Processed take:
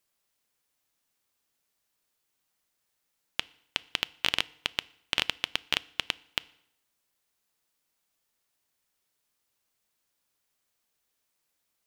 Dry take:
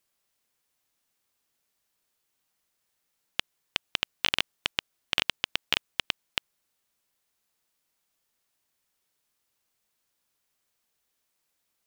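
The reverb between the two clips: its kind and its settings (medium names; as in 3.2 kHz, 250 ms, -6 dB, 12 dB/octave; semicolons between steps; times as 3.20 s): FDN reverb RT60 0.74 s, low-frequency decay 1×, high-frequency decay 0.85×, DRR 19.5 dB; trim -1 dB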